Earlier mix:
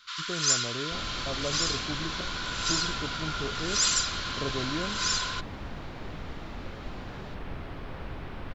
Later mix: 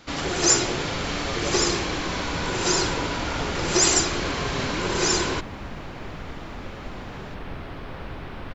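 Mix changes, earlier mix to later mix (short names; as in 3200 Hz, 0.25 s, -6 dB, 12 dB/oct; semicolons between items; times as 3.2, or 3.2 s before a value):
first sound: remove rippled Chebyshev high-pass 990 Hz, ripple 9 dB; second sound +4.5 dB; master: add low shelf 140 Hz -3 dB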